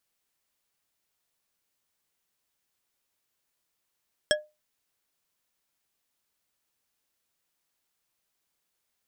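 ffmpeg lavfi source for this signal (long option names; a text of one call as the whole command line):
ffmpeg -f lavfi -i "aevalsrc='0.126*pow(10,-3*t/0.24)*sin(2*PI*606*t)+0.112*pow(10,-3*t/0.118)*sin(2*PI*1670.7*t)+0.1*pow(10,-3*t/0.074)*sin(2*PI*3274.8*t)+0.0891*pow(10,-3*t/0.052)*sin(2*PI*5413.4*t)+0.0794*pow(10,-3*t/0.039)*sin(2*PI*8084*t)':duration=0.89:sample_rate=44100" out.wav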